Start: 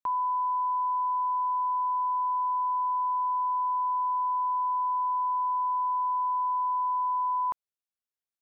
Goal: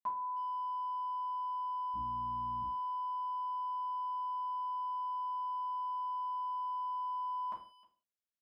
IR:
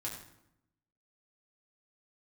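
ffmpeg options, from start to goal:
-filter_complex "[0:a]asettb=1/sr,asplit=3[link_01][link_02][link_03];[link_01]atrim=end=1.944[link_04];[link_02]atrim=start=1.94:end=2.62,asetpts=PTS-STARTPTS,afade=type=in:duration=0.004:curve=qsin,afade=type=out:start_time=0.676:duration=0.004:curve=qsin,aeval=exprs='val(0)+0.01*(sin(2*PI*60*n/s)+sin(2*PI*2*60*n/s)/2+sin(2*PI*3*60*n/s)/3+sin(2*PI*4*60*n/s)/4+sin(2*PI*5*60*n/s)/5)':channel_layout=same[link_05];[link_03]atrim=start=2.616[link_06];[link_04][link_05]acrossfade=duration=0.004:curve1=hsin:curve2=qsin[link_07];[link_07][link_06]acrossfade=duration=0.004:curve1=qsin:curve2=hsin,asplit=2[link_08][link_09];[link_09]adelay=310,highpass=300,lowpass=3400,asoftclip=type=hard:threshold=-31.5dB,volume=-20dB[link_10];[link_08][link_10]amix=inputs=2:normalize=0[link_11];[1:a]atrim=start_sample=2205,afade=type=out:start_time=0.45:duration=0.01,atrim=end_sample=20286,asetrate=88200,aresample=44100[link_12];[link_11][link_12]afir=irnorm=-1:irlink=0"

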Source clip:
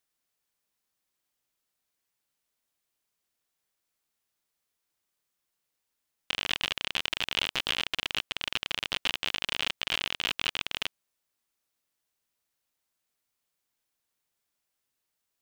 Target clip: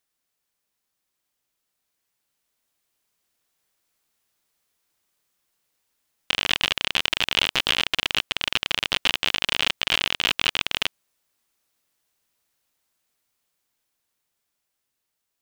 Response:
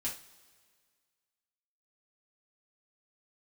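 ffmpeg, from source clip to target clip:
-af "dynaudnorm=framelen=780:gausssize=7:maxgain=6dB,volume=2.5dB"

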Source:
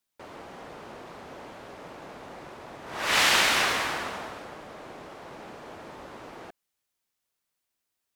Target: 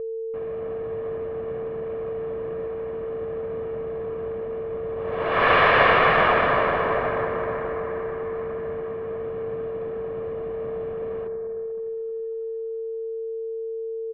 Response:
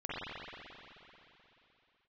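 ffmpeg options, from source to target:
-filter_complex "[0:a]flanger=delay=3.3:depth=7.4:regen=-83:speed=0.35:shape=triangular,asplit=2[link_01][link_02];[1:a]atrim=start_sample=2205,lowpass=4500[link_03];[link_02][link_03]afir=irnorm=-1:irlink=0,volume=-7dB[link_04];[link_01][link_04]amix=inputs=2:normalize=0,aeval=exprs='val(0)+0.0178*sin(2*PI*780*n/s)':channel_layout=same,aeval=exprs='0.282*(cos(1*acos(clip(val(0)/0.282,-1,1)))-cos(1*PI/2))+0.00316*(cos(6*acos(clip(val(0)/0.282,-1,1)))-cos(6*PI/2))+0.00224*(cos(7*acos(clip(val(0)/0.282,-1,1)))-cos(7*PI/2))':channel_layout=same,lowpass=frequency=5200:width=0.5412,lowpass=frequency=5200:width=1.3066,areverse,acompressor=mode=upward:threshold=-40dB:ratio=2.5,areverse,anlmdn=0.01,aecho=1:1:1:0.47,asetrate=25442,aresample=44100,volume=6.5dB"

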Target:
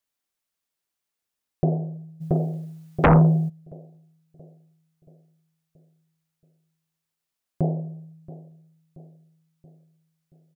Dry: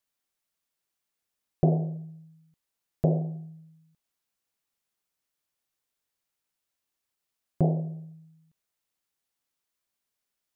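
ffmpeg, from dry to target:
ffmpeg -i in.wav -filter_complex "[0:a]asplit=2[link_01][link_02];[link_02]adelay=678,lowpass=frequency=1000:poles=1,volume=-16.5dB,asplit=2[link_03][link_04];[link_04]adelay=678,lowpass=frequency=1000:poles=1,volume=0.52,asplit=2[link_05][link_06];[link_06]adelay=678,lowpass=frequency=1000:poles=1,volume=0.52,asplit=2[link_07][link_08];[link_08]adelay=678,lowpass=frequency=1000:poles=1,volume=0.52,asplit=2[link_09][link_10];[link_10]adelay=678,lowpass=frequency=1000:poles=1,volume=0.52[link_11];[link_01][link_03][link_05][link_07][link_09][link_11]amix=inputs=6:normalize=0,asplit=3[link_12][link_13][link_14];[link_12]afade=type=out:start_time=2.2:duration=0.02[link_15];[link_13]aeval=exprs='0.299*sin(PI/2*5.01*val(0)/0.299)':channel_layout=same,afade=type=in:start_time=2.2:duration=0.02,afade=type=out:start_time=3.48:duration=0.02[link_16];[link_14]afade=type=in:start_time=3.48:duration=0.02[link_17];[link_15][link_16][link_17]amix=inputs=3:normalize=0" out.wav

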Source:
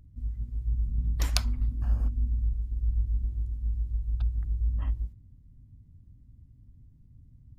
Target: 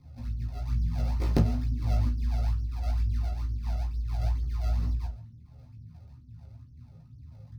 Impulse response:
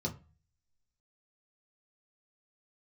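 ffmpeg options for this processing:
-filter_complex "[0:a]acrusher=samples=37:mix=1:aa=0.000001:lfo=1:lforange=59.2:lforate=2.2,flanger=delay=15:depth=2.7:speed=1.8[link_01];[1:a]atrim=start_sample=2205,atrim=end_sample=3969[link_02];[link_01][link_02]afir=irnorm=-1:irlink=0,volume=-2.5dB"

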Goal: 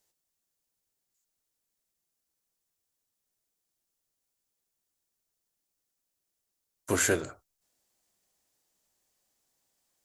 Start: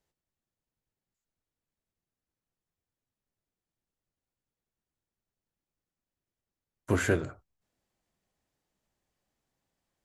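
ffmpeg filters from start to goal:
ffmpeg -i in.wav -af "bass=frequency=250:gain=-8,treble=frequency=4000:gain=12,volume=1dB" out.wav

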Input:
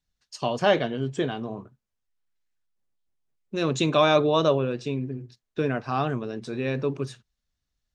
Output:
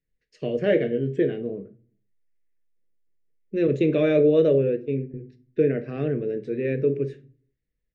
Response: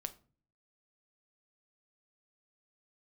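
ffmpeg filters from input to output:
-filter_complex "[0:a]asettb=1/sr,asplit=3[link_01][link_02][link_03];[link_01]atrim=end=3.674[link_04];[link_02]atrim=start=3.67:end=5.14,asetpts=PTS-STARTPTS,afade=type=in:duration=0.004:curve=qsin,afade=type=out:start_time=1.466:duration=0.004:curve=qsin,agate=range=-24dB:threshold=-28dB:ratio=16:detection=peak[link_05];[link_03]atrim=start=5.136[link_06];[link_04][link_05]acrossfade=duration=0.004:curve1=hsin:curve2=qsin[link_07];[link_07][link_06]acrossfade=duration=0.004:curve1=qsin:curve2=hsin,firequalizer=gain_entry='entry(100,0);entry(480,10);entry(870,-25);entry(1900,5);entry(3300,-11);entry(4800,-16);entry(10000,-22)':delay=0.05:min_phase=1[link_08];[1:a]atrim=start_sample=2205[link_09];[link_08][link_09]afir=irnorm=-1:irlink=0"

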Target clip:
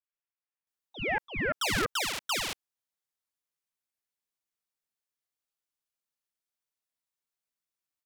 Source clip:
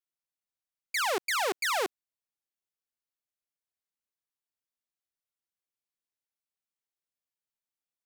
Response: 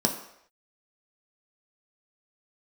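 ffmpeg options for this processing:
-filter_complex "[0:a]acrossover=split=1300[link_01][link_02];[link_02]adelay=670[link_03];[link_01][link_03]amix=inputs=2:normalize=0,aeval=exprs='0.141*(cos(1*acos(clip(val(0)/0.141,-1,1)))-cos(1*PI/2))+0.02*(cos(2*acos(clip(val(0)/0.141,-1,1)))-cos(2*PI/2))+0.00316*(cos(8*acos(clip(val(0)/0.141,-1,1)))-cos(8*PI/2))':channel_layout=same,aeval=exprs='val(0)*sin(2*PI*1400*n/s+1400*0.4/0.25*sin(2*PI*0.25*n/s))':channel_layout=same,volume=4.5dB"

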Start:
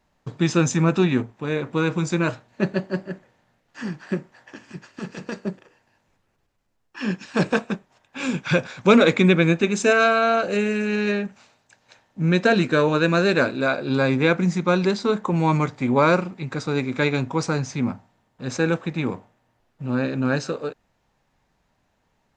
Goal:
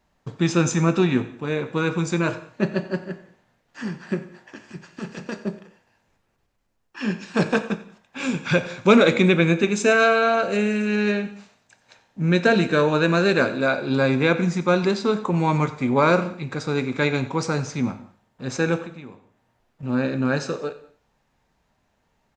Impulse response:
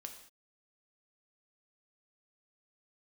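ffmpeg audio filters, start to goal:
-filter_complex "[0:a]asettb=1/sr,asplit=3[link_01][link_02][link_03];[link_01]atrim=end=18.784[link_04];[link_02]atrim=start=18.78:end=19.83,asetpts=PTS-STARTPTS,afade=type=in:duration=0.004:curve=qsin,afade=type=out:start_time=1.046:duration=0.004:curve=qsin,acompressor=threshold=-39dB:ratio=4[link_05];[link_03]atrim=start=19.826[link_06];[link_04][link_05]acrossfade=duration=0.004:curve1=hsin:curve2=qsin[link_07];[link_07][link_06]acrossfade=duration=0.004:curve1=qsin:curve2=hsin,aecho=1:1:91|182|273:0.112|0.0337|0.0101,asplit=2[link_08][link_09];[1:a]atrim=start_sample=2205[link_10];[link_09][link_10]afir=irnorm=-1:irlink=0,volume=4dB[link_11];[link_08][link_11]amix=inputs=2:normalize=0,volume=-5.5dB"

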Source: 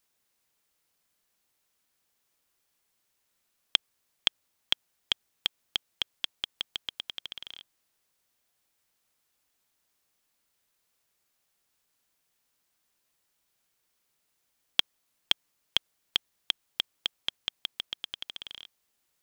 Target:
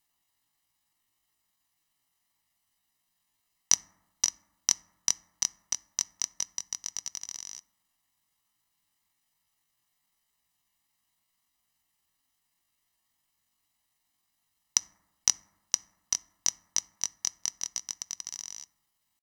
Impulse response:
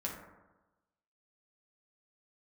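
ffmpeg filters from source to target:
-filter_complex "[0:a]aecho=1:1:1.8:0.69,asetrate=78577,aresample=44100,atempo=0.561231,asplit=2[link_01][link_02];[1:a]atrim=start_sample=2205,adelay=7[link_03];[link_02][link_03]afir=irnorm=-1:irlink=0,volume=-17dB[link_04];[link_01][link_04]amix=inputs=2:normalize=0"

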